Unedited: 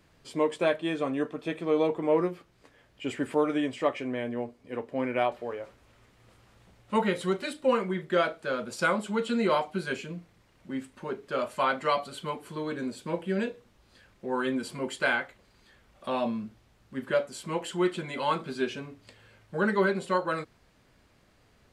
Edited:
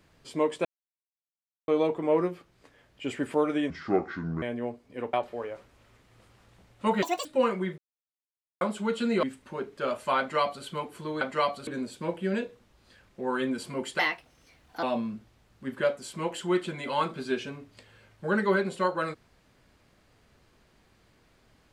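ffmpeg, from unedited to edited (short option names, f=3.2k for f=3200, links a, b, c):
-filter_complex "[0:a]asplit=15[a][b][c][d][e][f][g][h][i][j][k][l][m][n][o];[a]atrim=end=0.65,asetpts=PTS-STARTPTS,afade=t=out:st=0.646:d=0.004:c=hsin[p];[b]atrim=start=0.65:end=1.68,asetpts=PTS-STARTPTS,volume=0[q];[c]atrim=start=1.68:end=3.704,asetpts=PTS-STARTPTS,afade=t=in:d=0.004:c=hsin[r];[d]atrim=start=3.7:end=4.17,asetpts=PTS-STARTPTS,asetrate=28665,aresample=44100[s];[e]atrim=start=4.166:end=4.882[t];[f]atrim=start=5.218:end=7.114[u];[g]atrim=start=7.11:end=7.54,asetpts=PTS-STARTPTS,asetrate=83349,aresample=44100,atrim=end_sample=10033,asetpts=PTS-STARTPTS[v];[h]atrim=start=7.536:end=8.07,asetpts=PTS-STARTPTS,afade=t=out:st=0.53:d=0.004:c=hsin[w];[i]atrim=start=8.07:end=8.9,asetpts=PTS-STARTPTS,volume=0[x];[j]atrim=start=8.9:end=9.522,asetpts=PTS-STARTPTS,afade=t=in:d=0.004:c=hsin[y];[k]atrim=start=10.738:end=12.722[z];[l]atrim=start=11.698:end=12.162[aa];[m]atrim=start=12.718:end=15.044[ab];[n]atrim=start=15.04:end=16.13,asetpts=PTS-STARTPTS,asetrate=57330,aresample=44100,atrim=end_sample=36976,asetpts=PTS-STARTPTS[ac];[o]atrim=start=16.126[ad];[p][q][r]concat=n=3:v=0:a=1[ae];[ae][s]acrossfade=d=0.004:c1=hsin:c2=hsin[af];[af][t]acrossfade=d=0.004:c1=hsin:c2=hsin[ag];[ag][u]acrossfade=d=0.004:c1=hsin:c2=hsin[ah];[ah][v]acrossfade=d=0.004:c1=hsin:c2=hsin[ai];[w][x][y]concat=n=3:v=0:a=1[aj];[ai][aj]acrossfade=d=0.004:c1=hsin:c2=hsin[ak];[ak][z]acrossfade=d=0.004:c1=hsin:c2=hsin[al];[al][aa]acrossfade=d=0.004:c1=hsin:c2=hsin[am];[am][ab]acrossfade=d=0.004:c1=hsin:c2=hsin[an];[an][ac]acrossfade=d=0.004:c1=hsin:c2=hsin[ao];[ao][ad]acrossfade=d=0.004:c1=hsin:c2=hsin"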